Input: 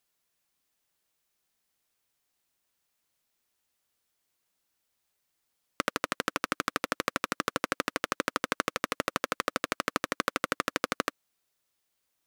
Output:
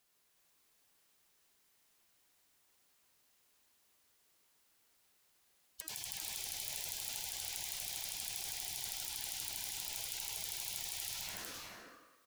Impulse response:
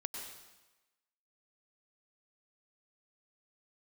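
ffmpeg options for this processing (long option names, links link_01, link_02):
-filter_complex "[0:a]asplit=2[link_01][link_02];[link_02]aeval=exprs='(mod(5.96*val(0)+1,2)-1)/5.96':channel_layout=same,volume=-4dB[link_03];[link_01][link_03]amix=inputs=2:normalize=0,bandreject=frequency=319.2:width_type=h:width=4,bandreject=frequency=638.4:width_type=h:width=4,bandreject=frequency=957.6:width_type=h:width=4,bandreject=frequency=1276.8:width_type=h:width=4,bandreject=frequency=1596:width_type=h:width=4,bandreject=frequency=1915.2:width_type=h:width=4,bandreject=frequency=2234.4:width_type=h:width=4,bandreject=frequency=2553.6:width_type=h:width=4,bandreject=frequency=2872.8:width_type=h:width=4,bandreject=frequency=3192:width_type=h:width=4,bandreject=frequency=3511.2:width_type=h:width=4,bandreject=frequency=3830.4:width_type=h:width=4,bandreject=frequency=4149.6:width_type=h:width=4,bandreject=frequency=4468.8:width_type=h:width=4,bandreject=frequency=4788:width_type=h:width=4,bandreject=frequency=5107.2:width_type=h:width=4,bandreject=frequency=5426.4:width_type=h:width=4,bandreject=frequency=5745.6:width_type=h:width=4,bandreject=frequency=6064.8:width_type=h:width=4,bandreject=frequency=6384:width_type=h:width=4,bandreject=frequency=6703.2:width_type=h:width=4,bandreject=frequency=7022.4:width_type=h:width=4,bandreject=frequency=7341.6:width_type=h:width=4,bandreject=frequency=7660.8:width_type=h:width=4,bandreject=frequency=7980:width_type=h:width=4,bandreject=frequency=8299.2:width_type=h:width=4,bandreject=frequency=8618.4:width_type=h:width=4,bandreject=frequency=8937.6:width_type=h:width=4,bandreject=frequency=9256.8:width_type=h:width=4,bandreject=frequency=9576:width_type=h:width=4,bandreject=frequency=9895.2:width_type=h:width=4,bandreject=frequency=10214.4:width_type=h:width=4,bandreject=frequency=10533.6:width_type=h:width=4,bandreject=frequency=10852.8:width_type=h:width=4,bandreject=frequency=11172:width_type=h:width=4,bandreject=frequency=11491.2:width_type=h:width=4,bandreject=frequency=11810.4:width_type=h:width=4,bandreject=frequency=12129.6:width_type=h:width=4[link_04];[1:a]atrim=start_sample=2205[link_05];[link_04][link_05]afir=irnorm=-1:irlink=0,afftfilt=real='re*lt(hypot(re,im),0.0141)':imag='im*lt(hypot(re,im),0.0141)':win_size=1024:overlap=0.75,aecho=1:1:368:0.631,volume=1dB"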